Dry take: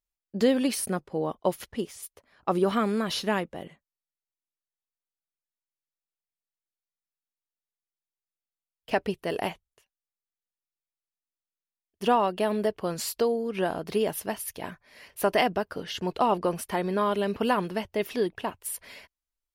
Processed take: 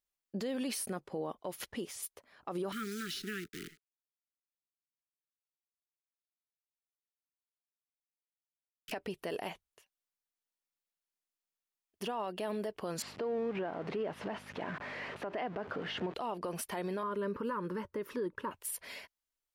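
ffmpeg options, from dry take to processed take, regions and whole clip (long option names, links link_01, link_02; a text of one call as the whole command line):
ffmpeg -i in.wav -filter_complex "[0:a]asettb=1/sr,asplit=3[link_01][link_02][link_03];[link_01]atrim=end=2.724[link_04];[link_02]atrim=start=2.72:end=8.92,asetpts=PTS-STARTPTS,afade=type=in:duration=0.004:curve=qsin,afade=type=out:start_time=6.196:duration=0.004:curve=qsin,acrusher=bits=7:dc=4:mix=0:aa=0.000001,asuperstop=centerf=740:order=20:qfactor=0.88,acrossover=split=120|990[link_05][link_06][link_07];[link_05]acompressor=threshold=-54dB:ratio=4[link_08];[link_06]acompressor=threshold=-40dB:ratio=4[link_09];[link_07]acompressor=threshold=-41dB:ratio=4[link_10];[link_08][link_09][link_10]amix=inputs=3:normalize=0[link_11];[link_03]atrim=start=8.916[link_12];[link_04][link_11]acrossfade=duration=0.004:curve1=hsin:curve2=qsin[link_13];[link_13][link_12]acrossfade=duration=0.004:curve1=qsin:curve2=hsin,asettb=1/sr,asplit=3[link_14][link_15][link_16];[link_14]atrim=end=13.024[link_17];[link_15]atrim=start=13.02:end=16.14,asetpts=PTS-STARTPTS,afade=type=in:duration=0.004:curve=qsin,afade=type=out:start_time=3.116:duration=0.004:curve=qsin,aeval=exprs='val(0)+0.5*0.02*sgn(val(0))':channel_layout=same,aeval=exprs='val(0)+0.00562*(sin(2*PI*50*n/s)+sin(2*PI*2*50*n/s)/2+sin(2*PI*3*50*n/s)/3+sin(2*PI*4*50*n/s)/4+sin(2*PI*5*50*n/s)/5)':channel_layout=same,highpass=120,lowpass=2000[link_18];[link_16]atrim=start=16.136[link_19];[link_17][link_18]acrossfade=duration=0.004:curve1=hsin:curve2=qsin[link_20];[link_20][link_19]acrossfade=duration=0.004:curve1=qsin:curve2=hsin,asettb=1/sr,asplit=3[link_21][link_22][link_23];[link_21]atrim=end=17.034[link_24];[link_22]atrim=start=17.03:end=18.51,asetpts=PTS-STARTPTS,afade=type=in:duration=0.004:curve=qsin,afade=type=out:start_time=1.476:duration=0.004:curve=qsin,asuperstop=centerf=720:order=8:qfactor=2.4,highshelf=frequency=1900:width_type=q:width=1.5:gain=-10.5[link_25];[link_23]atrim=start=18.506[link_26];[link_24][link_25]acrossfade=duration=0.004:curve1=hsin:curve2=qsin[link_27];[link_27][link_26]acrossfade=duration=0.004:curve1=qsin:curve2=hsin,lowshelf=frequency=120:gain=-10.5,acompressor=threshold=-26dB:ratio=6,alimiter=level_in=4.5dB:limit=-24dB:level=0:latency=1:release=87,volume=-4.5dB" out.wav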